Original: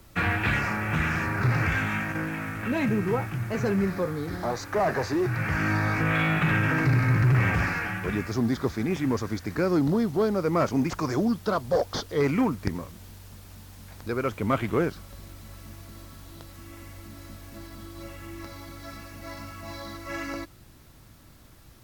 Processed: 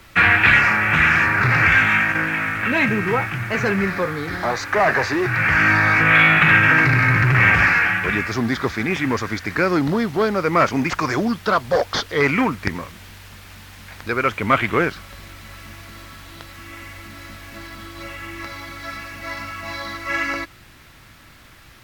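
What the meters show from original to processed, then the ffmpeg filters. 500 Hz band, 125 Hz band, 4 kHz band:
+5.0 dB, +2.5 dB, +11.0 dB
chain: -af "equalizer=frequency=2100:width_type=o:width=2.2:gain=13,volume=2.5dB"

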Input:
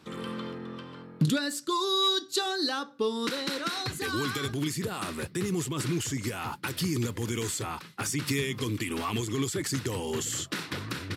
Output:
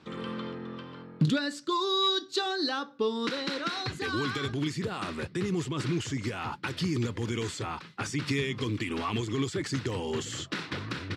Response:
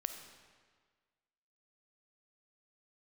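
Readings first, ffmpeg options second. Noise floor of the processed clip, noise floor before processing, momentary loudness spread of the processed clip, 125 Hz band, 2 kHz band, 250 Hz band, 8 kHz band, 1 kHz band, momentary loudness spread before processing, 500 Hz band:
−49 dBFS, −49 dBFS, 9 LU, 0.0 dB, 0.0 dB, 0.0 dB, −8.5 dB, 0.0 dB, 8 LU, 0.0 dB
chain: -af "lowpass=4900"

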